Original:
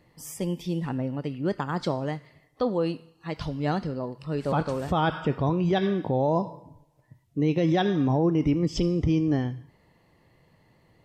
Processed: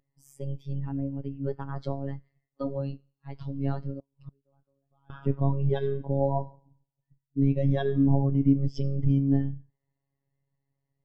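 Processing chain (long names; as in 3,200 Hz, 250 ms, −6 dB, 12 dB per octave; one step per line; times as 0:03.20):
sub-octave generator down 2 octaves, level −1 dB
phases set to zero 138 Hz
0:03.99–0:05.10: gate with flip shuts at −23 dBFS, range −28 dB
every bin expanded away from the loudest bin 1.5 to 1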